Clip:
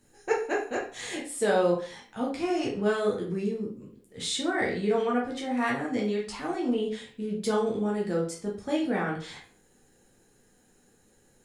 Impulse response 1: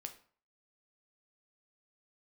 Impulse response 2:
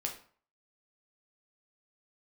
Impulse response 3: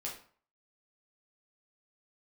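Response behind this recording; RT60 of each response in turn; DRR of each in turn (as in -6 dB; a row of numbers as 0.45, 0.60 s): 3; 0.45, 0.45, 0.45 s; 6.0, 1.0, -3.5 dB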